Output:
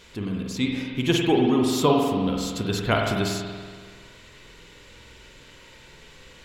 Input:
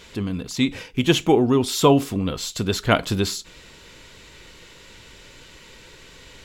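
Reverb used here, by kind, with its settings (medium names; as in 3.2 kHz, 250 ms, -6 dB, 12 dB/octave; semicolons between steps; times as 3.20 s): spring tank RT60 1.7 s, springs 47 ms, chirp 65 ms, DRR 0 dB; trim -5 dB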